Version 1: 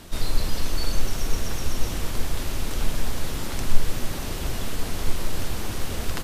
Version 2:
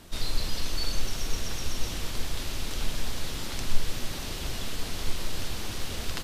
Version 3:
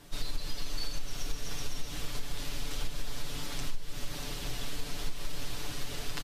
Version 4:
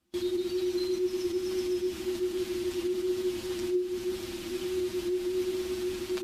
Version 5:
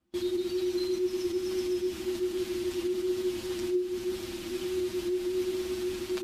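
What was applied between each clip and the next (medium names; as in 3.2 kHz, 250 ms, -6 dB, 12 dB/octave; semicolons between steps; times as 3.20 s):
dynamic bell 4 kHz, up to +7 dB, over -51 dBFS, Q 0.71; trim -6 dB
comb 6.9 ms, depth 79%; compression 12:1, threshold -19 dBFS, peak gain reduction 13.5 dB; trim -5.5 dB
frequency shift -370 Hz; gate with hold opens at -32 dBFS; trim -2 dB
tape noise reduction on one side only decoder only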